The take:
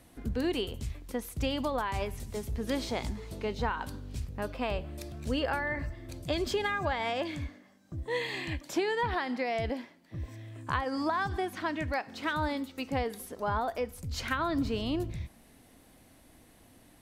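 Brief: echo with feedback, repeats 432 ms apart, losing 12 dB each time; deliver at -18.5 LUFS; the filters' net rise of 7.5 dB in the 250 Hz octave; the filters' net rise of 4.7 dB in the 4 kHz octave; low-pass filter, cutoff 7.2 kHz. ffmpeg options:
-af "lowpass=7200,equalizer=f=250:t=o:g=9,equalizer=f=4000:t=o:g=6.5,aecho=1:1:432|864|1296:0.251|0.0628|0.0157,volume=3.55"

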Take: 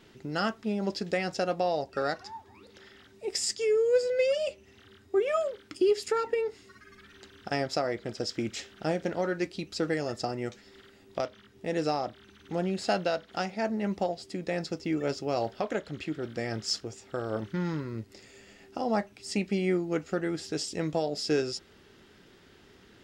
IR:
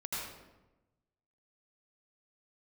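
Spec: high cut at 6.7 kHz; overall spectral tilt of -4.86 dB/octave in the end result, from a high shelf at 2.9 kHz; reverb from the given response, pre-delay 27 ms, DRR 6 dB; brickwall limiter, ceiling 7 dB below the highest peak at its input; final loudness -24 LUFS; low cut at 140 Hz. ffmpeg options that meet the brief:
-filter_complex "[0:a]highpass=140,lowpass=6700,highshelf=f=2900:g=-6.5,alimiter=limit=0.0708:level=0:latency=1,asplit=2[s0][s1];[1:a]atrim=start_sample=2205,adelay=27[s2];[s1][s2]afir=irnorm=-1:irlink=0,volume=0.355[s3];[s0][s3]amix=inputs=2:normalize=0,volume=2.99"

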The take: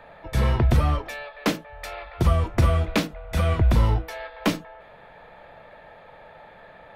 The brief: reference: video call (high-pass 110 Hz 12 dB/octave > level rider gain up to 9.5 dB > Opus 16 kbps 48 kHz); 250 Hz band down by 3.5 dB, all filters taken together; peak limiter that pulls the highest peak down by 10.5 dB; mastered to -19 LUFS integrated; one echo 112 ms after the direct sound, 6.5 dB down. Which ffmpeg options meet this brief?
-af "equalizer=f=250:t=o:g=-4.5,alimiter=limit=0.1:level=0:latency=1,highpass=110,aecho=1:1:112:0.473,dynaudnorm=m=2.99,volume=5.31" -ar 48000 -c:a libopus -b:a 16k

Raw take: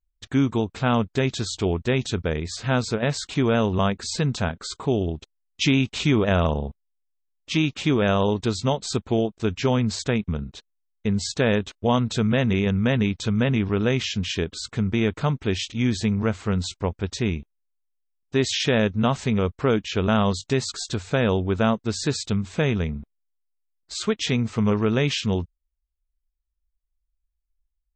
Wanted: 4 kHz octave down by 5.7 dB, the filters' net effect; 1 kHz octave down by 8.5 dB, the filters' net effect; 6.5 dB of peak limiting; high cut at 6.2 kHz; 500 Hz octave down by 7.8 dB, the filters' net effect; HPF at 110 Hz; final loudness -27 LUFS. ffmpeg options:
-af "highpass=110,lowpass=6200,equalizer=f=500:t=o:g=-8,equalizer=f=1000:t=o:g=-8.5,equalizer=f=4000:t=o:g=-6,volume=1.26,alimiter=limit=0.158:level=0:latency=1"

